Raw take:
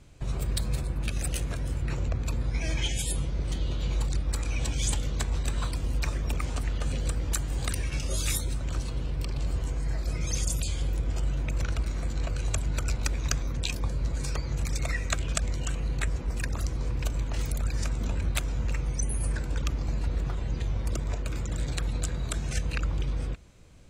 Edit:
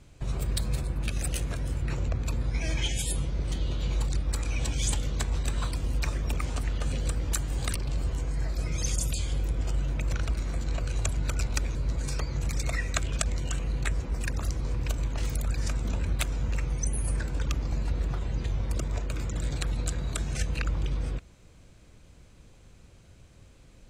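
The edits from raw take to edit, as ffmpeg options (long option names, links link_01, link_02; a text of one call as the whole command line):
ffmpeg -i in.wav -filter_complex "[0:a]asplit=3[link_01][link_02][link_03];[link_01]atrim=end=7.752[link_04];[link_02]atrim=start=9.238:end=13.242[link_05];[link_03]atrim=start=13.908[link_06];[link_04][link_05]acrossfade=duration=0.004:curve1=hsin:curve2=hsin[link_07];[link_07][link_06]acrossfade=duration=0.004:curve1=hsin:curve2=hsin" out.wav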